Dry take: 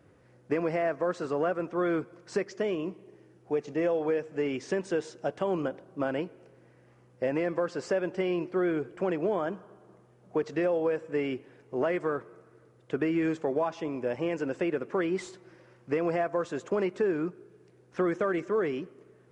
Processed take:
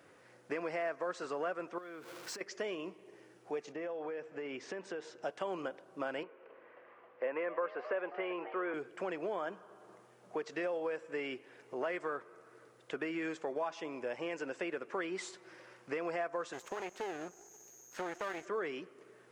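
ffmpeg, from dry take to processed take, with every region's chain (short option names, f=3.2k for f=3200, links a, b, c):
-filter_complex "[0:a]asettb=1/sr,asplit=3[a][b][c];[a]atrim=end=1.784[d];[b]atrim=start=1.78:end=2.41,asetpts=PTS-STARTPTS,afade=t=in:d=0.004:c=qsin,afade=t=out:st=0.626:d=0.004:c=qsin,aeval=exprs='val(0)+0.5*0.00596*sgn(val(0))':c=same,acompressor=threshold=-40dB:ratio=6:attack=3.2:release=140:knee=1:detection=peak[e];[c]atrim=start=2.406[f];[d][e]acrossfade=d=0.004:c1=hsin:c2=qsin[g];[g][f]acrossfade=d=0.004:c1=qsin:c2=hsin,asettb=1/sr,asplit=3[h][i][j];[h]atrim=end=3.724[k];[i]atrim=start=3.72:end=5.23,asetpts=PTS-STARTPTS,afade=t=in:d=0.004:c=qsin,afade=t=out:st=1.506:d=0.004:c=qsin,aemphasis=mode=reproduction:type=75kf,acompressor=threshold=-30dB:ratio=4:attack=3.2:release=140:knee=1:detection=peak[l];[j]atrim=start=5.226[m];[k][l]acrossfade=d=0.004:c1=hsin:c2=qsin[n];[n][m]acrossfade=d=0.004:c1=qsin:c2=hsin,asettb=1/sr,asplit=3[o][p][q];[o]atrim=end=6.234[r];[p]atrim=start=6.23:end=8.74,asetpts=PTS-STARTPTS,afade=t=in:d=0.004:c=qsin,afade=t=out:st=2.506:d=0.004:c=qsin,highpass=f=190:w=0.5412,highpass=f=190:w=1.3066,equalizer=f=200:t=q:w=4:g=-8,equalizer=f=300:t=q:w=4:g=-4,equalizer=f=490:t=q:w=4:g=5,equalizer=f=710:t=q:w=4:g=-4,equalizer=f=1.1k:t=q:w=4:g=8,lowpass=f=2.7k:w=0.5412,lowpass=f=2.7k:w=1.3066,asplit=7[s][t][u][v][w][x][y];[t]adelay=268,afreqshift=100,volume=-17dB[z];[u]adelay=536,afreqshift=200,volume=-21.2dB[aa];[v]adelay=804,afreqshift=300,volume=-25.3dB[ab];[w]adelay=1072,afreqshift=400,volume=-29.5dB[ac];[x]adelay=1340,afreqshift=500,volume=-33.6dB[ad];[y]adelay=1608,afreqshift=600,volume=-37.8dB[ae];[s][z][aa][ab][ac][ad][ae]amix=inputs=7:normalize=0,atrim=end_sample=110691[af];[q]atrim=start=8.736[ag];[r][af]acrossfade=d=0.004:c1=hsin:c2=qsin[ah];[ah][ag]acrossfade=d=0.004:c1=qsin:c2=hsin,asettb=1/sr,asplit=3[ai][aj][ak];[ai]atrim=end=16.534[al];[aj]atrim=start=16.53:end=18.45,asetpts=PTS-STARTPTS,afade=t=in:d=0.004:c=qsin,afade=t=out:st=1.916:d=0.004:c=qsin,aeval=exprs='val(0)+0.00126*sin(2*PI*6500*n/s)':c=same,aeval=exprs='max(val(0),0)':c=same[am];[ak]atrim=start=18.446[an];[al][am]acrossfade=d=0.004:c1=hsin:c2=qsin[ao];[ao][an]acrossfade=d=0.004:c1=qsin:c2=hsin,highpass=f=910:p=1,acompressor=threshold=-57dB:ratio=1.5,volume=6.5dB"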